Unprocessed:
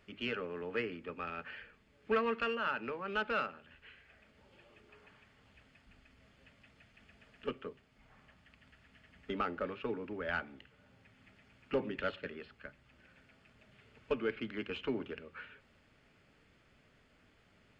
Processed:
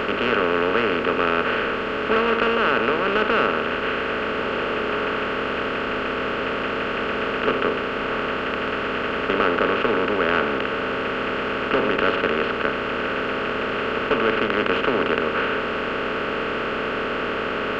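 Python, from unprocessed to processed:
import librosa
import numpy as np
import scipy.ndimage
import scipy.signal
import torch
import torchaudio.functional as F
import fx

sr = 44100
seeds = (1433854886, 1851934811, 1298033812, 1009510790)

y = fx.bin_compress(x, sr, power=0.2)
y = F.gain(torch.from_numpy(y), 6.5).numpy()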